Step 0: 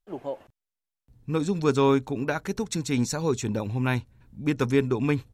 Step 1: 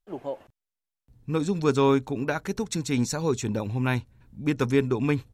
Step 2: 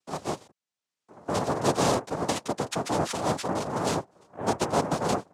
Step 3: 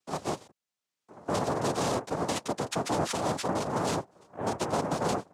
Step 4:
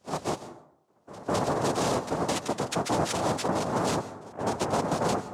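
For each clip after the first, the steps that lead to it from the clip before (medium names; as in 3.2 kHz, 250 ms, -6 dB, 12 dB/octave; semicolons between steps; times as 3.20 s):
no audible change
noise-vocoded speech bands 2; three bands compressed up and down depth 40%; trim -2 dB
peak limiter -19 dBFS, peak gain reduction 8 dB
reverse echo 207 ms -19 dB; plate-style reverb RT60 0.73 s, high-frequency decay 0.4×, pre-delay 120 ms, DRR 13.5 dB; trim +2 dB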